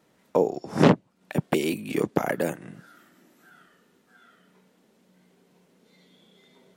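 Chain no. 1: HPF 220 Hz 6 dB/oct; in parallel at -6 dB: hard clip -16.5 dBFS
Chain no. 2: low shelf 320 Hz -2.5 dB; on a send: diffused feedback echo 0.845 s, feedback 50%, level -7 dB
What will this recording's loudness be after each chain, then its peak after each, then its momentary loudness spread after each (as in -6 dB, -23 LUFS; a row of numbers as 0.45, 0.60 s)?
-24.0, -27.0 LUFS; -3.5, -5.0 dBFS; 10, 21 LU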